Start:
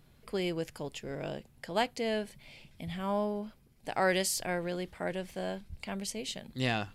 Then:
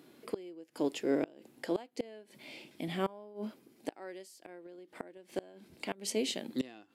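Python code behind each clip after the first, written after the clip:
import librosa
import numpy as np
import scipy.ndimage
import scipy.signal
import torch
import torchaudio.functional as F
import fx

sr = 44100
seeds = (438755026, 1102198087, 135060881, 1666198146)

y = fx.highpass_res(x, sr, hz=310.0, q=3.4)
y = fx.gate_flip(y, sr, shuts_db=-23.0, range_db=-27)
y = fx.hpss(y, sr, part='percussive', gain_db=-5)
y = y * 10.0 ** (6.0 / 20.0)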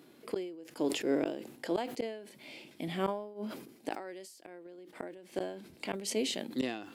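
y = fx.sustainer(x, sr, db_per_s=73.0)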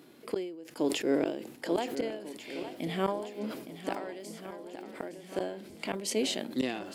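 y = fx.echo_swing(x, sr, ms=1443, ratio=1.5, feedback_pct=42, wet_db=-11.5)
y = y * 10.0 ** (2.5 / 20.0)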